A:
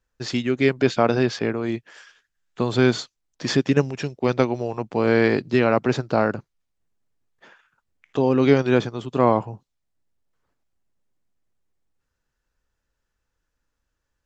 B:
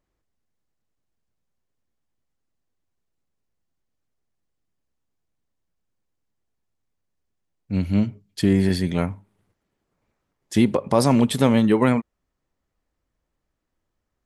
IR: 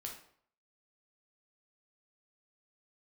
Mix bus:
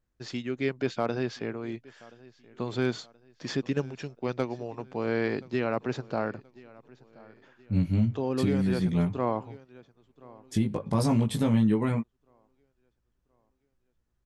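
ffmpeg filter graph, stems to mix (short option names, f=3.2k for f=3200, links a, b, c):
-filter_complex "[0:a]asoftclip=type=hard:threshold=-5.5dB,volume=-10dB,asplit=2[a][b];[b]volume=-22.5dB[c];[1:a]bass=f=250:g=10,treble=f=4k:g=3,alimiter=limit=-4.5dB:level=0:latency=1:release=114,flanger=delay=16.5:depth=2.1:speed=0.22,volume=-5dB[d];[c]aecho=0:1:1027|2054|3081|4108|5135|6162:1|0.43|0.185|0.0795|0.0342|0.0147[e];[a][d][e]amix=inputs=3:normalize=0,highshelf=f=7.7k:g=-4,alimiter=limit=-15dB:level=0:latency=1:release=476"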